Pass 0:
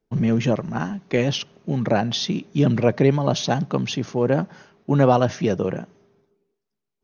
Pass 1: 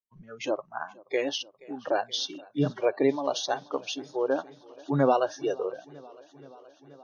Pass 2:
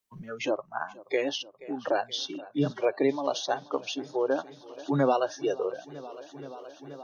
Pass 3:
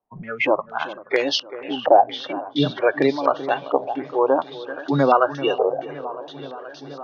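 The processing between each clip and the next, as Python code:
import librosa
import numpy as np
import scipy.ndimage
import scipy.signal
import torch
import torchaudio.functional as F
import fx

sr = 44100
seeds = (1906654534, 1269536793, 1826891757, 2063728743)

y1 = fx.noise_reduce_blind(x, sr, reduce_db=29)
y1 = fx.echo_warbled(y1, sr, ms=477, feedback_pct=77, rate_hz=2.8, cents=69, wet_db=-24)
y1 = F.gain(torch.from_numpy(y1), -5.0).numpy()
y2 = fx.band_squash(y1, sr, depth_pct=40)
y3 = fx.echo_feedback(y2, sr, ms=387, feedback_pct=23, wet_db=-14.0)
y3 = fx.filter_held_lowpass(y3, sr, hz=4.3, low_hz=780.0, high_hz=4700.0)
y3 = F.gain(torch.from_numpy(y3), 6.0).numpy()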